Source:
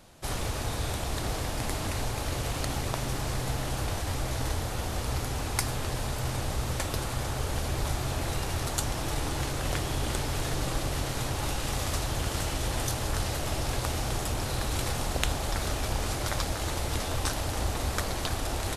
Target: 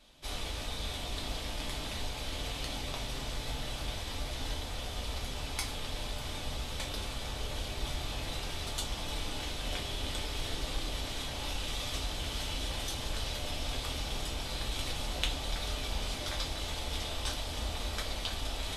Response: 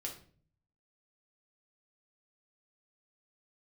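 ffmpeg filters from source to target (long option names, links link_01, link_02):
-filter_complex "[0:a]equalizer=frequency=3300:width=1.1:gain=12[link_01];[1:a]atrim=start_sample=2205,asetrate=74970,aresample=44100[link_02];[link_01][link_02]afir=irnorm=-1:irlink=0,volume=-4dB"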